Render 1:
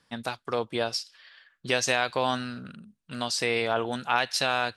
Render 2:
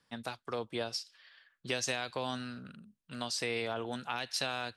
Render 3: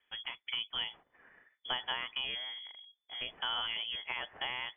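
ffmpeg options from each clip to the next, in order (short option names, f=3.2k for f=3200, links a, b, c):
-filter_complex "[0:a]acrossover=split=380|3000[a][b][c];[b]acompressor=threshold=-28dB:ratio=6[d];[a][d][c]amix=inputs=3:normalize=0,volume=-6.5dB"
-af "lowpass=f=3k:t=q:w=0.5098,lowpass=f=3k:t=q:w=0.6013,lowpass=f=3k:t=q:w=0.9,lowpass=f=3k:t=q:w=2.563,afreqshift=-3500,bandreject=f=2.7k:w=14"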